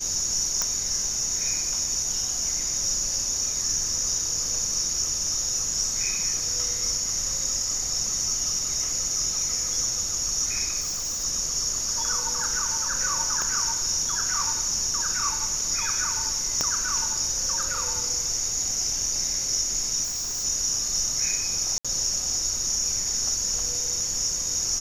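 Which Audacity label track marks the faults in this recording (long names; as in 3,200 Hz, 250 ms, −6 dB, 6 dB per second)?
0.620000	0.620000	click
10.800000	11.250000	clipping −25.5 dBFS
13.420000	13.420000	click −14 dBFS
16.610000	16.610000	click −10 dBFS
20.030000	20.450000	clipping −26.5 dBFS
21.780000	21.850000	drop-out 66 ms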